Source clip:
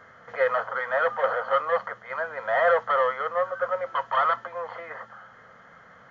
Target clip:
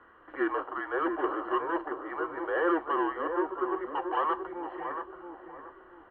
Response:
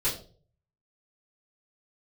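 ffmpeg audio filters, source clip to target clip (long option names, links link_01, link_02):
-filter_complex "[0:a]asplit=2[link_01][link_02];[link_02]adelay=679,lowpass=frequency=1000:poles=1,volume=-4.5dB,asplit=2[link_03][link_04];[link_04]adelay=679,lowpass=frequency=1000:poles=1,volume=0.4,asplit=2[link_05][link_06];[link_06]adelay=679,lowpass=frequency=1000:poles=1,volume=0.4,asplit=2[link_07][link_08];[link_08]adelay=679,lowpass=frequency=1000:poles=1,volume=0.4,asplit=2[link_09][link_10];[link_10]adelay=679,lowpass=frequency=1000:poles=1,volume=0.4[link_11];[link_01][link_03][link_05][link_07][link_09][link_11]amix=inputs=6:normalize=0,highpass=frequency=200:width_type=q:width=0.5412,highpass=frequency=200:width_type=q:width=1.307,lowpass=frequency=3400:width_type=q:width=0.5176,lowpass=frequency=3400:width_type=q:width=0.7071,lowpass=frequency=3400:width_type=q:width=1.932,afreqshift=-170,volume=-6dB"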